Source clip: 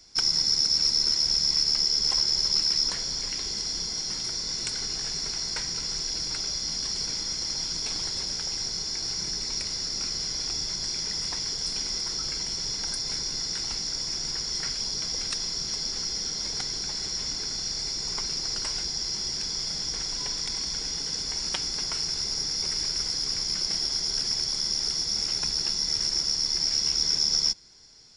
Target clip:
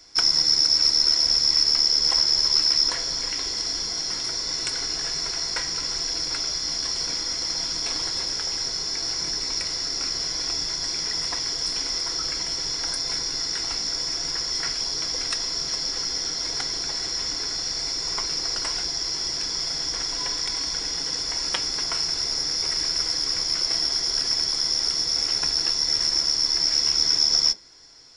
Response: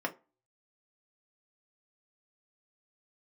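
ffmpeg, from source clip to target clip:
-filter_complex "[0:a]asplit=2[a][b];[1:a]atrim=start_sample=2205,lowshelf=f=170:g=-10.5[c];[b][c]afir=irnorm=-1:irlink=0,volume=-3.5dB[d];[a][d]amix=inputs=2:normalize=0"

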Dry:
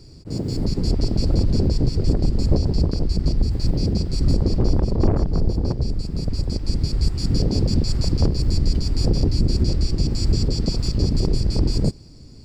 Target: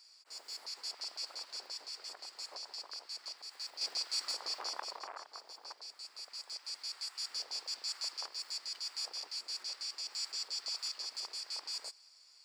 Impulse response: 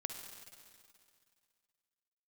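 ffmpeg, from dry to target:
-filter_complex "[0:a]highpass=f=1k:w=0.5412,highpass=f=1k:w=1.3066,asettb=1/sr,asplit=3[a][b][c];[a]atrim=end=3.814[d];[b]atrim=start=3.81:end=4.99,asetpts=PTS-STARTPTS,afade=t=in:d=0.004:c=qsin,afade=t=out:st=1.176:d=0.004:c=qsin,acontrast=65[e];[c]atrim=start=4.986[f];[d][e]acrossfade=d=0.004:c1=hsin:c2=qsin[g];[g][f]acrossfade=d=0.004:c1=qsin:c2=hsin,volume=-6dB"

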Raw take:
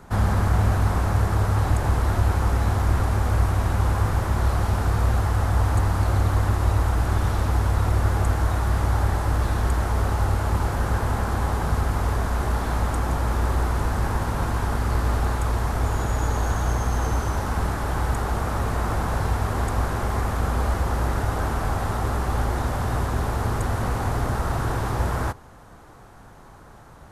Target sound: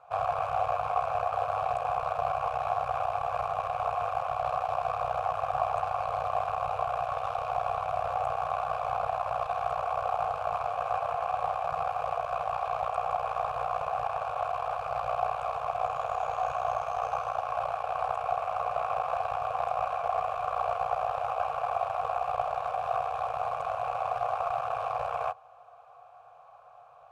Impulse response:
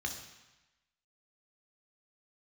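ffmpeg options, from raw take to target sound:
-filter_complex "[0:a]aeval=exprs='0.398*(cos(1*acos(clip(val(0)/0.398,-1,1)))-cos(1*PI/2))+0.178*(cos(4*acos(clip(val(0)/0.398,-1,1)))-cos(4*PI/2))':c=same,afftfilt=real='re*(1-between(b*sr/4096,160,450))':imag='im*(1-between(b*sr/4096,160,450))':win_size=4096:overlap=0.75,asplit=3[a][b][c];[a]bandpass=f=730:t=q:w=8,volume=0dB[d];[b]bandpass=f=1.09k:t=q:w=8,volume=-6dB[e];[c]bandpass=f=2.44k:t=q:w=8,volume=-9dB[f];[d][e][f]amix=inputs=3:normalize=0,volume=4.5dB"

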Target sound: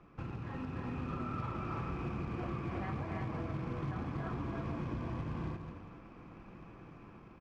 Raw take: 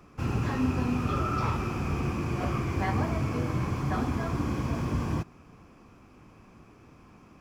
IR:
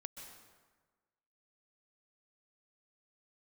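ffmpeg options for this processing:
-filter_complex "[0:a]aecho=1:1:286|343|480:0.501|0.708|0.126,asplit=2[a][b];[1:a]atrim=start_sample=2205,asetrate=48510,aresample=44100,adelay=6[c];[b][c]afir=irnorm=-1:irlink=0,volume=-6dB[d];[a][d]amix=inputs=2:normalize=0,acrusher=bits=4:mode=log:mix=0:aa=0.000001,acompressor=threshold=-33dB:ratio=12,lowpass=2.7k,dynaudnorm=f=120:g=13:m=4dB,volume=-5.5dB"

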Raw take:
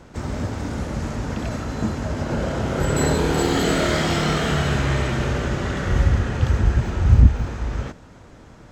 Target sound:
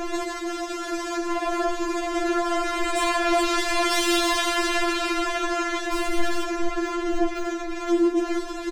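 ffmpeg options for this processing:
-filter_complex "[0:a]asettb=1/sr,asplit=3[a][b][c];[a]atrim=end=1.174[d];[b]atrim=start=1.17:end=1.8,asetpts=PTS-STARTPTS,afade=t=in:d=0.004:c=qsin,afade=t=out:st=0.626:d=0.004:c=qsin,equalizer=f=470:t=o:w=1.6:g=11.5[e];[c]atrim=start=1.796[f];[d][e]acrossfade=d=0.004:c1=hsin:c2=qsin[g];[g][f]acrossfade=d=0.004:c1=qsin:c2=hsin,asplit=2[h][i];[i]asplit=3[j][k][l];[j]adelay=443,afreqshift=130,volume=-15.5dB[m];[k]adelay=886,afreqshift=260,volume=-23.9dB[n];[l]adelay=1329,afreqshift=390,volume=-32.3dB[o];[m][n][o]amix=inputs=3:normalize=0[p];[h][p]amix=inputs=2:normalize=0,dynaudnorm=f=370:g=11:m=8dB,asettb=1/sr,asplit=3[q][r][s];[q]atrim=end=2.804[t];[r]atrim=start=2.8:end=3.91,asetpts=PTS-STARTPTS,afade=t=in:d=0.004:c=qsin,afade=t=out:st=1.106:d=0.004:c=qsin,aemphasis=mode=reproduction:type=50kf[u];[s]atrim=start=3.906[v];[t][u]acrossfade=d=0.004:c1=hsin:c2=qsin[w];[w][v]acrossfade=d=0.004:c1=qsin:c2=hsin,aeval=exprs='0.944*sin(PI/2*7.08*val(0)/0.944)':c=same,bandreject=f=50:t=h:w=6,bandreject=f=100:t=h:w=6,bandreject=f=150:t=h:w=6,bandreject=f=200:t=h:w=6,bandreject=f=250:t=h:w=6,bandreject=f=300:t=h:w=6,bandreject=f=350:t=h:w=6,bandreject=f=400:t=h:w=6,bandreject=f=450:t=h:w=6,alimiter=limit=-15dB:level=0:latency=1:release=19,asettb=1/sr,asplit=3[x][y][z];[x]atrim=end=5.924[aa];[y]atrim=start=5.92:end=6.44,asetpts=PTS-STARTPTS,afade=t=in:d=0.004:c=qsin,afade=t=out:st=0.516:d=0.004:c=qsin,aeval=exprs='0.178*(cos(1*acos(clip(val(0)/0.178,-1,1)))-cos(1*PI/2))+0.0224*(cos(7*acos(clip(val(0)/0.178,-1,1)))-cos(7*PI/2))+0.0224*(cos(8*acos(clip(val(0)/0.178,-1,1)))-cos(8*PI/2))':c=same[ab];[z]atrim=start=6.436[ac];[aa][ab]acrossfade=d=0.004:c1=hsin:c2=qsin[ad];[ad][ac]acrossfade=d=0.004:c1=qsin:c2=hsin,afftfilt=real='re*4*eq(mod(b,16),0)':imag='im*4*eq(mod(b,16),0)':win_size=2048:overlap=0.75"

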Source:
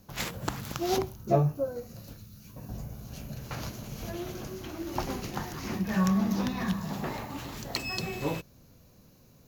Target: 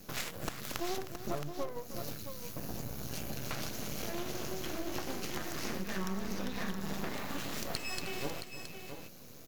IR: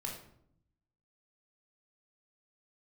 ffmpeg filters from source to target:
-af "highpass=f=290:p=1,equalizer=f=910:w=3.9:g=-9.5,acompressor=threshold=-45dB:ratio=6,aeval=exprs='max(val(0),0)':c=same,aecho=1:1:311|670:0.2|0.376,volume=12.5dB"

